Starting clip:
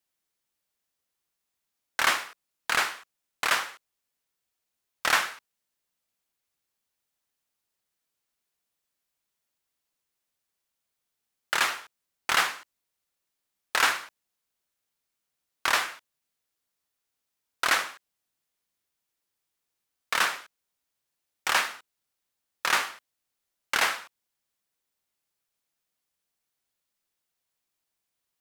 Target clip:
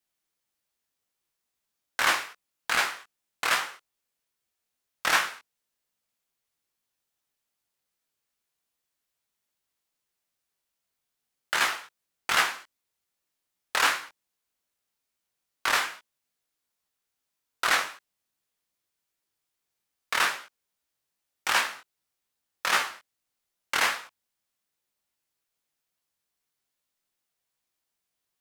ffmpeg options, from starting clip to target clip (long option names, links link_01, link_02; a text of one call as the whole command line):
ffmpeg -i in.wav -af "flanger=delay=15.5:depth=7.1:speed=2.5,volume=3dB" out.wav